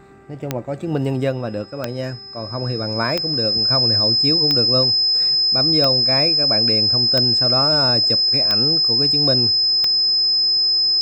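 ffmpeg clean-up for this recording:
-af "adeclick=t=4,bandreject=f=393:t=h:w=4,bandreject=f=786:t=h:w=4,bandreject=f=1179:t=h:w=4,bandreject=f=1572:t=h:w=4,bandreject=f=1965:t=h:w=4,bandreject=f=5100:w=30"

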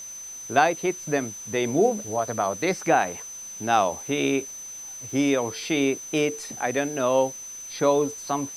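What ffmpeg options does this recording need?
-af "adeclick=t=4,bandreject=f=6100:w=30,afwtdn=0.0035"

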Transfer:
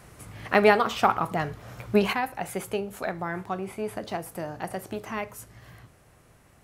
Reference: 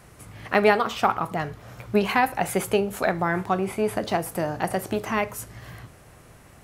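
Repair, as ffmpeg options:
-af "asetnsamples=n=441:p=0,asendcmd='2.13 volume volume 7.5dB',volume=1"

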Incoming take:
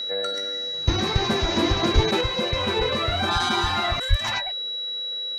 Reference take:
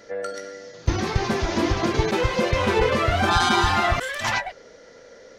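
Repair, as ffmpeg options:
-filter_complex "[0:a]bandreject=f=3900:w=30,asplit=3[s0][s1][s2];[s0]afade=t=out:st=1.94:d=0.02[s3];[s1]highpass=f=140:w=0.5412,highpass=f=140:w=1.3066,afade=t=in:st=1.94:d=0.02,afade=t=out:st=2.06:d=0.02[s4];[s2]afade=t=in:st=2.06:d=0.02[s5];[s3][s4][s5]amix=inputs=3:normalize=0,asplit=3[s6][s7][s8];[s6]afade=t=out:st=4.09:d=0.02[s9];[s7]highpass=f=140:w=0.5412,highpass=f=140:w=1.3066,afade=t=in:st=4.09:d=0.02,afade=t=out:st=4.21:d=0.02[s10];[s8]afade=t=in:st=4.21:d=0.02[s11];[s9][s10][s11]amix=inputs=3:normalize=0,asetnsamples=n=441:p=0,asendcmd='2.21 volume volume 4.5dB',volume=1"

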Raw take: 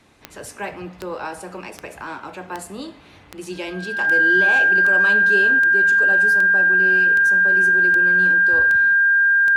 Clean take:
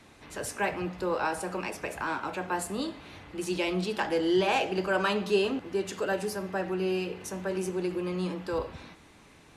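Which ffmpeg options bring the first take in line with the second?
-af "adeclick=t=4,bandreject=f=1600:w=30"

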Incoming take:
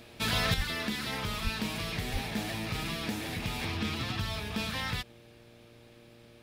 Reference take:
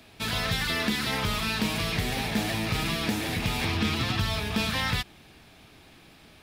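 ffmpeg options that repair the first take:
-filter_complex "[0:a]bandreject=f=117.1:t=h:w=4,bandreject=f=234.2:t=h:w=4,bandreject=f=351.3:t=h:w=4,bandreject=f=468.4:t=h:w=4,bandreject=f=585.5:t=h:w=4,asplit=3[s0][s1][s2];[s0]afade=t=out:st=0.56:d=0.02[s3];[s1]highpass=f=140:w=0.5412,highpass=f=140:w=1.3066,afade=t=in:st=0.56:d=0.02,afade=t=out:st=0.68:d=0.02[s4];[s2]afade=t=in:st=0.68:d=0.02[s5];[s3][s4][s5]amix=inputs=3:normalize=0,asplit=3[s6][s7][s8];[s6]afade=t=out:st=1.43:d=0.02[s9];[s7]highpass=f=140:w=0.5412,highpass=f=140:w=1.3066,afade=t=in:st=1.43:d=0.02,afade=t=out:st=1.55:d=0.02[s10];[s8]afade=t=in:st=1.55:d=0.02[s11];[s9][s10][s11]amix=inputs=3:normalize=0,asplit=3[s12][s13][s14];[s12]afade=t=out:st=2.12:d=0.02[s15];[s13]highpass=f=140:w=0.5412,highpass=f=140:w=1.3066,afade=t=in:st=2.12:d=0.02,afade=t=out:st=2.24:d=0.02[s16];[s14]afade=t=in:st=2.24:d=0.02[s17];[s15][s16][s17]amix=inputs=3:normalize=0,asetnsamples=n=441:p=0,asendcmd='0.54 volume volume 6.5dB',volume=1"

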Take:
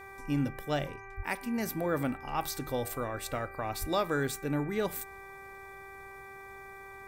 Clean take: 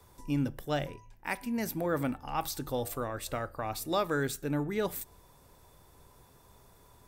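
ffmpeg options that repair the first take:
-filter_complex "[0:a]bandreject=f=390.7:t=h:w=4,bandreject=f=781.4:t=h:w=4,bandreject=f=1172.1:t=h:w=4,bandreject=f=1562.8:t=h:w=4,bandreject=f=1953.5:t=h:w=4,bandreject=f=2344.2:t=h:w=4,asplit=3[s0][s1][s2];[s0]afade=t=out:st=1.16:d=0.02[s3];[s1]highpass=f=140:w=0.5412,highpass=f=140:w=1.3066,afade=t=in:st=1.16:d=0.02,afade=t=out:st=1.28:d=0.02[s4];[s2]afade=t=in:st=1.28:d=0.02[s5];[s3][s4][s5]amix=inputs=3:normalize=0,asplit=3[s6][s7][s8];[s6]afade=t=out:st=3.8:d=0.02[s9];[s7]highpass=f=140:w=0.5412,highpass=f=140:w=1.3066,afade=t=in:st=3.8:d=0.02,afade=t=out:st=3.92:d=0.02[s10];[s8]afade=t=in:st=3.92:d=0.02[s11];[s9][s10][s11]amix=inputs=3:normalize=0"

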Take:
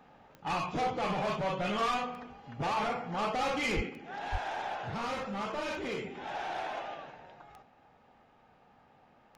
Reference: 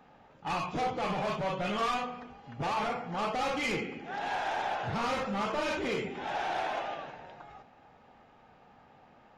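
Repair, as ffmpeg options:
-filter_complex "[0:a]adeclick=t=4,asplit=3[s0][s1][s2];[s0]afade=t=out:st=3.75:d=0.02[s3];[s1]highpass=f=140:w=0.5412,highpass=f=140:w=1.3066,afade=t=in:st=3.75:d=0.02,afade=t=out:st=3.87:d=0.02[s4];[s2]afade=t=in:st=3.87:d=0.02[s5];[s3][s4][s5]amix=inputs=3:normalize=0,asplit=3[s6][s7][s8];[s6]afade=t=out:st=4.31:d=0.02[s9];[s7]highpass=f=140:w=0.5412,highpass=f=140:w=1.3066,afade=t=in:st=4.31:d=0.02,afade=t=out:st=4.43:d=0.02[s10];[s8]afade=t=in:st=4.43:d=0.02[s11];[s9][s10][s11]amix=inputs=3:normalize=0,asetnsamples=n=441:p=0,asendcmd='3.89 volume volume 4dB',volume=1"

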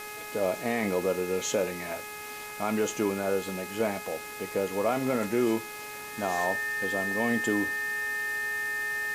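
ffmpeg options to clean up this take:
-af "adeclick=t=4,bandreject=f=419.9:t=h:w=4,bandreject=f=839.8:t=h:w=4,bandreject=f=1259.7:t=h:w=4,bandreject=f=1679.6:t=h:w=4,bandreject=f=2099.5:t=h:w=4,bandreject=f=2519.4:t=h:w=4,bandreject=f=1800:w=30,afwtdn=0.0063"

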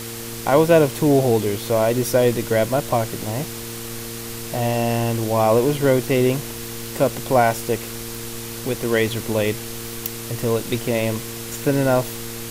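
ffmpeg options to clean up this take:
-af "adeclick=t=4,bandreject=f=115.5:t=h:w=4,bandreject=f=231:t=h:w=4,bandreject=f=346.5:t=h:w=4,bandreject=f=462:t=h:w=4,afwtdn=0.022"

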